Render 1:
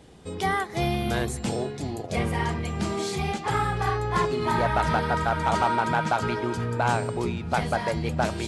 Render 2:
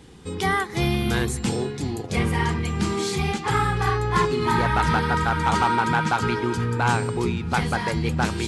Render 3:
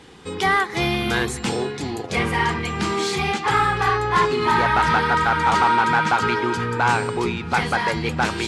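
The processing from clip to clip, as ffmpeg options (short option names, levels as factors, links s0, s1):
-af "equalizer=f=630:w=3.9:g=-14.5,volume=1.68"
-filter_complex "[0:a]asplit=2[s0][s1];[s1]highpass=f=720:p=1,volume=4.47,asoftclip=type=tanh:threshold=0.422[s2];[s0][s2]amix=inputs=2:normalize=0,lowpass=f=3300:p=1,volume=0.501"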